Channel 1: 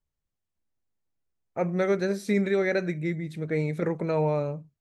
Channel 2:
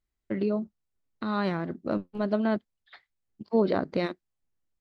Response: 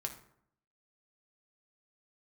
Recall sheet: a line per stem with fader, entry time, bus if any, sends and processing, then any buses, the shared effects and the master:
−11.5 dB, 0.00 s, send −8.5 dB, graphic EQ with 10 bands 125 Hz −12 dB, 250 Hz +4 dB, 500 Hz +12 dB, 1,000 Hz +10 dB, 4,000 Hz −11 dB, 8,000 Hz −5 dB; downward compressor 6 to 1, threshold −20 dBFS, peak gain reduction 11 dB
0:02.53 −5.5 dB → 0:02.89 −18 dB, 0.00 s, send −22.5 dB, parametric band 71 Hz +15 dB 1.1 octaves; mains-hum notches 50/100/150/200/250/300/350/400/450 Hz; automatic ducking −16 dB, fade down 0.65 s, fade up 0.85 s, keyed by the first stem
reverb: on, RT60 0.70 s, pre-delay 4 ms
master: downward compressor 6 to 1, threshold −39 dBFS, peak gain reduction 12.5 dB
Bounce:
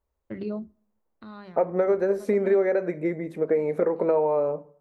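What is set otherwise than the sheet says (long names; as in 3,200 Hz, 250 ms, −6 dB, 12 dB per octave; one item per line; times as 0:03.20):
stem 1 −11.5 dB → −2.0 dB
master: missing downward compressor 6 to 1, threshold −39 dBFS, peak gain reduction 12.5 dB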